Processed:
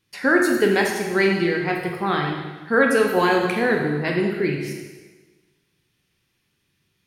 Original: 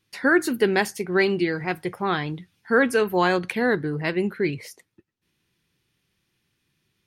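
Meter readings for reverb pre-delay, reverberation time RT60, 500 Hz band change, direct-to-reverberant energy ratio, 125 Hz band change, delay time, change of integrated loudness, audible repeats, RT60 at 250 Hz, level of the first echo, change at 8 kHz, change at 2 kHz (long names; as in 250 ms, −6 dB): 6 ms, 1.3 s, +2.5 dB, 0.5 dB, +3.0 dB, no echo audible, +2.5 dB, no echo audible, 1.3 s, no echo audible, +3.0 dB, +3.0 dB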